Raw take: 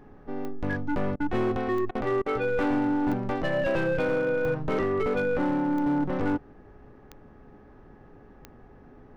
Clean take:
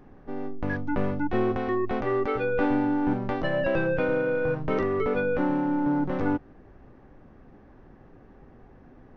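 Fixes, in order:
clipped peaks rebuilt −21 dBFS
click removal
hum removal 420.3 Hz, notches 4
repair the gap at 0:01.16/0:01.91/0:02.22, 40 ms

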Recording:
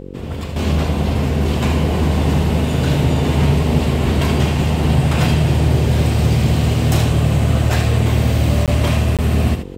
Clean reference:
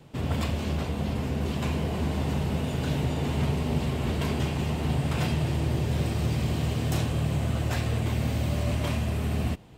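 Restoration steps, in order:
hum removal 46.6 Hz, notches 11
repair the gap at 0:08.66/0:09.17, 17 ms
echo removal 77 ms −8 dB
level correction −10.5 dB, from 0:00.56

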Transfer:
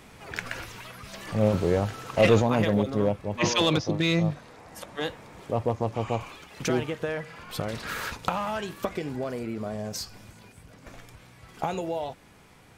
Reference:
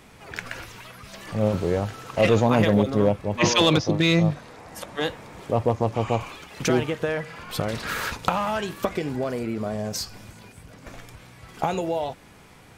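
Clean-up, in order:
clipped peaks rebuilt −10.5 dBFS
level 0 dB, from 0:02.42 +4.5 dB

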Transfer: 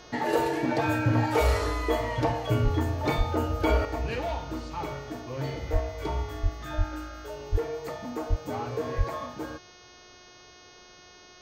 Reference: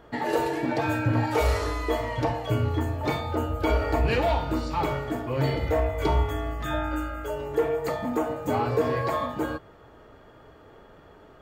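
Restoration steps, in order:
hum removal 361.2 Hz, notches 18
high-pass at the plosives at 0:02.63/0:03.17/0:05.72/0:06.42/0:06.77/0:07.51/0:08.29/0:08.97
level correction +7.5 dB, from 0:03.85

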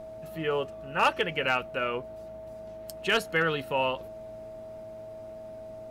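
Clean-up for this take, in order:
clipped peaks rebuilt −16 dBFS
hum removal 110.7 Hz, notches 8
notch filter 640 Hz, Q 30

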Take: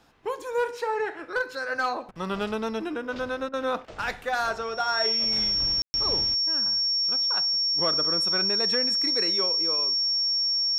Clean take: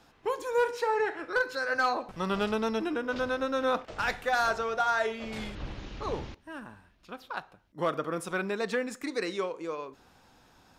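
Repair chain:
notch filter 5,500 Hz, Q 30
ambience match 0:05.82–0:05.94
repair the gap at 0:02.11/0:03.49, 43 ms

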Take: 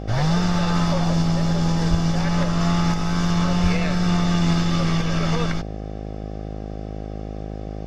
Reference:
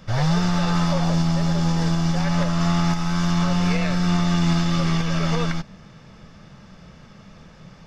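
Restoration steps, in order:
hum removal 52.4 Hz, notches 15
0:01.90–0:02.02: high-pass filter 140 Hz 24 dB per octave
0:03.62–0:03.74: high-pass filter 140 Hz 24 dB per octave

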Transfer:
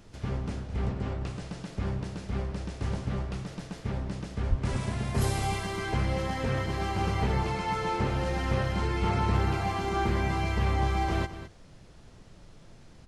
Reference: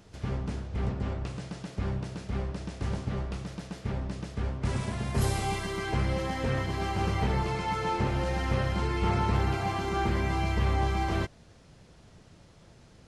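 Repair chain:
0:04.49–0:04.61: high-pass filter 140 Hz 24 dB per octave
noise reduction from a noise print 6 dB
echo removal 211 ms −12.5 dB

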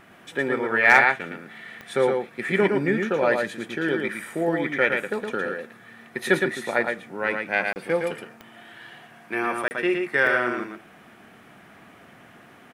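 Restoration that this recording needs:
clipped peaks rebuilt −5 dBFS
click removal
repair the gap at 0:07.73/0:09.68, 29 ms
echo removal 114 ms −4.5 dB

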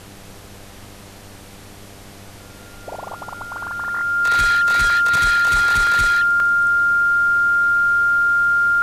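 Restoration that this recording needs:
hum removal 99.2 Hz, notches 8
notch filter 1,400 Hz, Q 30
repair the gap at 0:03.08/0:03.58/0:04.90/0:05.87/0:06.40, 1.7 ms
noise reduction from a noise print 25 dB

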